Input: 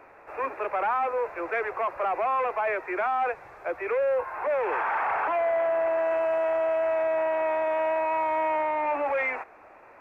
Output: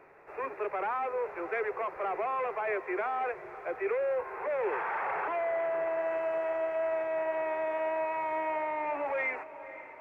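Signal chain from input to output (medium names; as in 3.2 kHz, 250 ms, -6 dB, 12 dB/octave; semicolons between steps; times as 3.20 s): graphic EQ with 31 bands 160 Hz +10 dB, 400 Hz +9 dB, 2 kHz +4 dB; echo that smears into a reverb 515 ms, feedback 61%, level -15 dB; trim -7 dB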